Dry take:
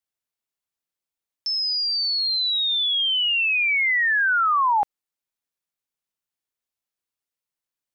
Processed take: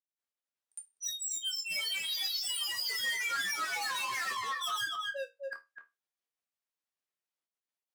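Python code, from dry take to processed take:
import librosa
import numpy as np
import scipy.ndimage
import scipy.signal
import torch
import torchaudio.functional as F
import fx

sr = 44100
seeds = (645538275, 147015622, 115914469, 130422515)

p1 = fx.granulator(x, sr, seeds[0], grain_ms=134.0, per_s=22.0, spray_ms=847.0, spread_st=12)
p2 = fx.high_shelf(p1, sr, hz=3200.0, db=-4.5)
p3 = p2 + fx.echo_single(p2, sr, ms=252, db=-10.5, dry=0)
p4 = np.clip(p3, -10.0 ** (-33.0 / 20.0), 10.0 ** (-33.0 / 20.0))
p5 = fx.highpass(p4, sr, hz=310.0, slope=6)
p6 = fx.resonator_bank(p5, sr, root=39, chord='major', decay_s=0.21)
y = p6 * librosa.db_to_amplitude(9.0)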